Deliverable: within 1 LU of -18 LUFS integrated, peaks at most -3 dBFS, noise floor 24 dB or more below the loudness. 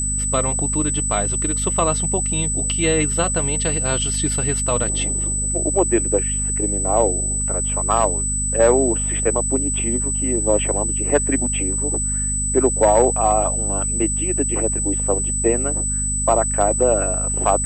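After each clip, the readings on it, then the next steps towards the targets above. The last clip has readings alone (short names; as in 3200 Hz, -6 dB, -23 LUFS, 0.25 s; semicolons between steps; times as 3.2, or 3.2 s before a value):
hum 50 Hz; harmonics up to 250 Hz; hum level -23 dBFS; steady tone 8000 Hz; tone level -21 dBFS; loudness -18.5 LUFS; peak -4.5 dBFS; loudness target -18.0 LUFS
-> notches 50/100/150/200/250 Hz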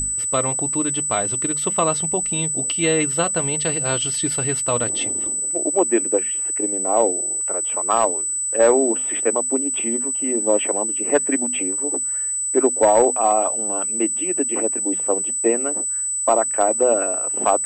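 hum none; steady tone 8000 Hz; tone level -21 dBFS
-> notch 8000 Hz, Q 30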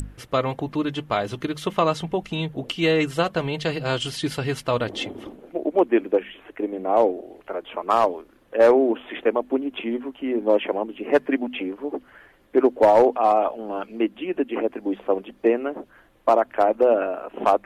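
steady tone none; loudness -23.0 LUFS; peak -7.0 dBFS; loudness target -18.0 LUFS
-> gain +5 dB; limiter -3 dBFS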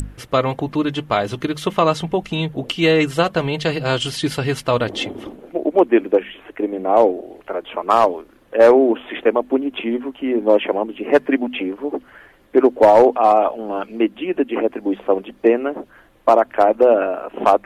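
loudness -18.0 LUFS; peak -3.0 dBFS; noise floor -50 dBFS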